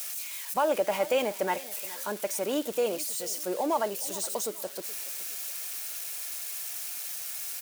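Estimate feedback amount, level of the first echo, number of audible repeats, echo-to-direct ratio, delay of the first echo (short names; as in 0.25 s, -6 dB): 35%, -18.5 dB, 2, -18.0 dB, 0.422 s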